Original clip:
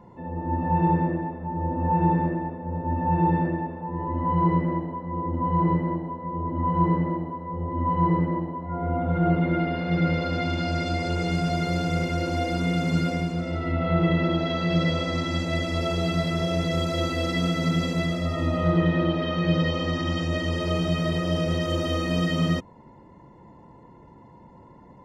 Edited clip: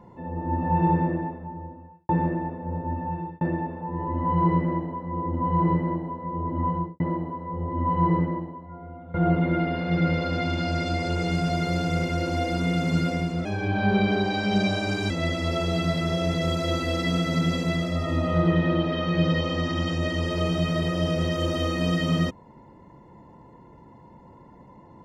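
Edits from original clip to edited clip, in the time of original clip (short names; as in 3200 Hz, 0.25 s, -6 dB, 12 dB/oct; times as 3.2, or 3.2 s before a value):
1.26–2.09 fade out quadratic
2.72–3.41 fade out
6.61–7 studio fade out
8.2–9.14 fade out quadratic, to -17.5 dB
13.45–15.4 speed 118%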